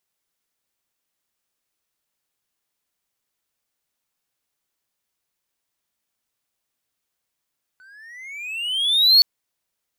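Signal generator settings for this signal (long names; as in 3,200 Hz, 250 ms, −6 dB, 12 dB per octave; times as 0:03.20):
pitch glide with a swell triangle, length 1.42 s, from 1,490 Hz, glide +19 semitones, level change +38.5 dB, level −6 dB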